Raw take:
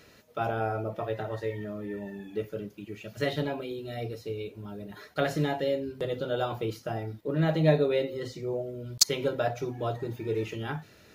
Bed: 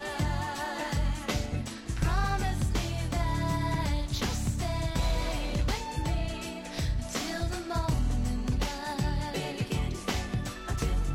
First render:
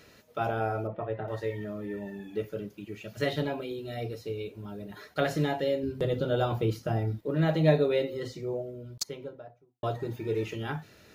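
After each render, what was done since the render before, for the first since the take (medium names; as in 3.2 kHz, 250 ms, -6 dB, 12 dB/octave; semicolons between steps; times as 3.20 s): 0.87–1.28 s: distance through air 490 m; 5.83–7.23 s: bass shelf 270 Hz +9 dB; 8.15–9.83 s: studio fade out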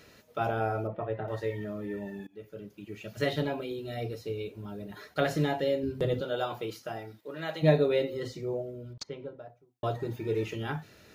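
2.27–3.06 s: fade in, from -23 dB; 6.20–7.62 s: high-pass 590 Hz -> 1.4 kHz 6 dB/octave; 8.93–9.39 s: distance through air 170 m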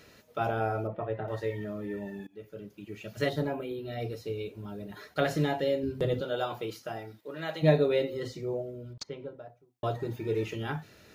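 3.28–3.99 s: peaking EQ 2.2 kHz -> 10 kHz -15 dB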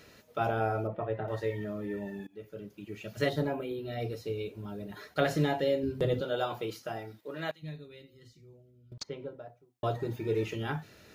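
7.51–8.92 s: amplifier tone stack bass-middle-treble 6-0-2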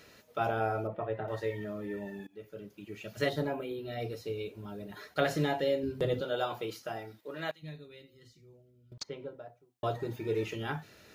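bass shelf 320 Hz -4 dB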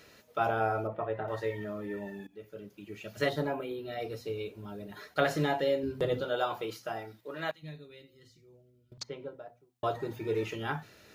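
hum notches 60/120/180/240 Hz; dynamic bell 1.1 kHz, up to +4 dB, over -48 dBFS, Q 1.1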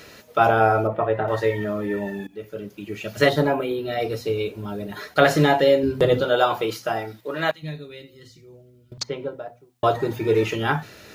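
trim +12 dB; peak limiter -1 dBFS, peak gain reduction 2 dB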